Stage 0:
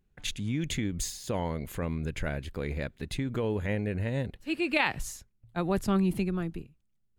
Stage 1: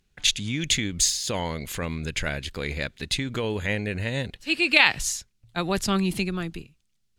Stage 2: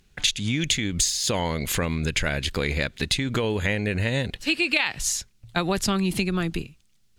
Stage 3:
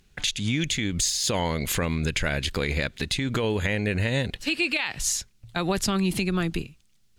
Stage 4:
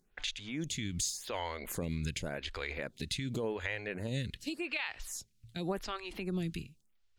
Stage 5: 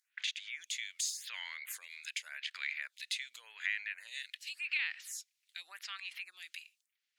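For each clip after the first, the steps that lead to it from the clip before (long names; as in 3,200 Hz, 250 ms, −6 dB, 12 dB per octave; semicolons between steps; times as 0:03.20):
parametric band 4,800 Hz +14.5 dB 2.8 octaves; level +1 dB
downward compressor 5 to 1, threshold −30 dBFS, peak gain reduction 16.5 dB; level +9 dB
brickwall limiter −14 dBFS, peak gain reduction 7 dB
phaser with staggered stages 0.88 Hz; level −8 dB
four-pole ladder high-pass 1,600 Hz, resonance 40%; level +6.5 dB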